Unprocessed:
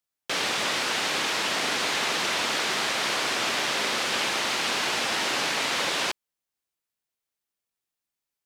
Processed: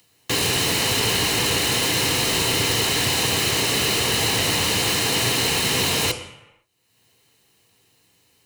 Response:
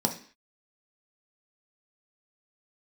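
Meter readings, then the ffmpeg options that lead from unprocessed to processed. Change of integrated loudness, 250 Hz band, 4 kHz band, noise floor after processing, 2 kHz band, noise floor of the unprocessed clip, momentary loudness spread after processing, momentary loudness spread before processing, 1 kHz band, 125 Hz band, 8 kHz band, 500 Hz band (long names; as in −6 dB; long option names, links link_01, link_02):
+6.0 dB, +9.5 dB, +6.0 dB, −62 dBFS, +2.0 dB, below −85 dBFS, 1 LU, 1 LU, +1.0 dB, +19.5 dB, +9.0 dB, +6.0 dB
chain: -filter_complex "[0:a]acompressor=mode=upward:threshold=-49dB:ratio=2.5,aeval=exprs='(mod(14.1*val(0)+1,2)-1)/14.1':channel_layout=same,asplit=2[link_01][link_02];[1:a]atrim=start_sample=2205,asetrate=22932,aresample=44100[link_03];[link_02][link_03]afir=irnorm=-1:irlink=0,volume=-6.5dB[link_04];[link_01][link_04]amix=inputs=2:normalize=0"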